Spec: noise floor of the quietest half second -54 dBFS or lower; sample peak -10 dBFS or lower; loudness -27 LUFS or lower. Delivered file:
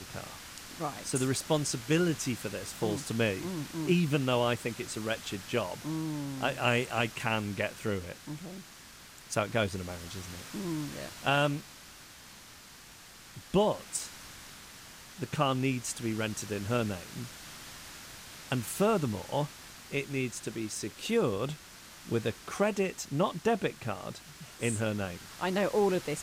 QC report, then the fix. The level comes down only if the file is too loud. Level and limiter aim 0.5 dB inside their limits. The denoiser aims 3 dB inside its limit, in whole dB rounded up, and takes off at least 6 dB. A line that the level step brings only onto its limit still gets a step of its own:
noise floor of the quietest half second -52 dBFS: fail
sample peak -13.5 dBFS: OK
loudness -32.0 LUFS: OK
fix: denoiser 6 dB, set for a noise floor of -52 dBFS

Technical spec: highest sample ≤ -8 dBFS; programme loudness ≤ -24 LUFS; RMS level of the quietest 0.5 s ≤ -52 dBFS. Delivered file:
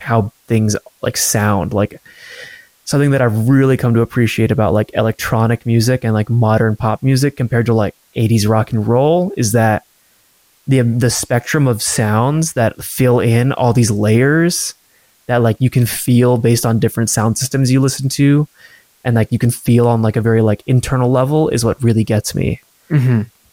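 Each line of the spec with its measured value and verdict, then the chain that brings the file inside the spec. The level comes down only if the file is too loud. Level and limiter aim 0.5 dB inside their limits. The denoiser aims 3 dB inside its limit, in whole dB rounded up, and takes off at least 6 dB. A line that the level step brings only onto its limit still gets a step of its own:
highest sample -3.0 dBFS: fail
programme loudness -14.5 LUFS: fail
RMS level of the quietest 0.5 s -54 dBFS: OK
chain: gain -10 dB

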